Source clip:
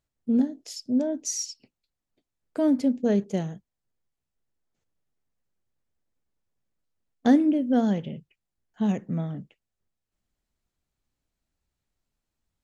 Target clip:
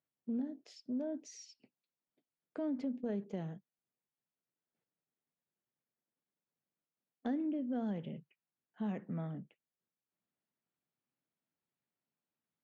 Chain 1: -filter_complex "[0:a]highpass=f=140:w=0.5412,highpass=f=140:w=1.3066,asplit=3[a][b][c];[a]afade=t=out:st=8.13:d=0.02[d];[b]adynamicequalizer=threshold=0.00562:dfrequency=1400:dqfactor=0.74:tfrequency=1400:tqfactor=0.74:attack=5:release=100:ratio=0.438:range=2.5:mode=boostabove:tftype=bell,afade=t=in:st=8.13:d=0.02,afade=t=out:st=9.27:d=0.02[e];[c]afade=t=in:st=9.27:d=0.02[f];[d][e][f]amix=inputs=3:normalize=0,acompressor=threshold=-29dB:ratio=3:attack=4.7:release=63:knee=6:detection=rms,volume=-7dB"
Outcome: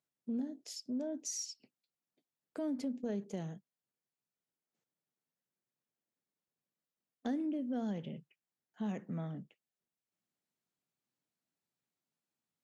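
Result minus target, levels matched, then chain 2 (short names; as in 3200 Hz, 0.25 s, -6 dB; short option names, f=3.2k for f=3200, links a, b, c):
4000 Hz band +10.0 dB
-filter_complex "[0:a]highpass=f=140:w=0.5412,highpass=f=140:w=1.3066,asplit=3[a][b][c];[a]afade=t=out:st=8.13:d=0.02[d];[b]adynamicequalizer=threshold=0.00562:dfrequency=1400:dqfactor=0.74:tfrequency=1400:tqfactor=0.74:attack=5:release=100:ratio=0.438:range=2.5:mode=boostabove:tftype=bell,afade=t=in:st=8.13:d=0.02,afade=t=out:st=9.27:d=0.02[e];[c]afade=t=in:st=9.27:d=0.02[f];[d][e][f]amix=inputs=3:normalize=0,acompressor=threshold=-29dB:ratio=3:attack=4.7:release=63:knee=6:detection=rms,lowpass=2.9k,volume=-7dB"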